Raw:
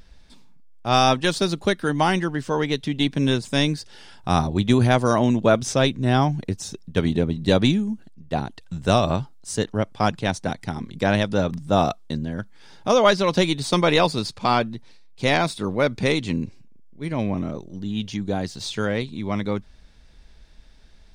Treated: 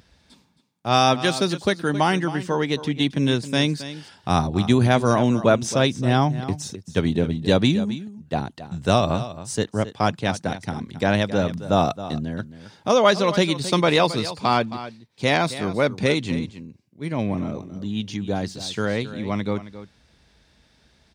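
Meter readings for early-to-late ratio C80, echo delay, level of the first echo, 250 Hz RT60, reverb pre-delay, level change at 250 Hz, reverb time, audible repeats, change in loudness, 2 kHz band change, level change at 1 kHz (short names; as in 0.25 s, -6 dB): none, 0.269 s, -14.0 dB, none, none, 0.0 dB, none, 1, 0.0 dB, 0.0 dB, 0.0 dB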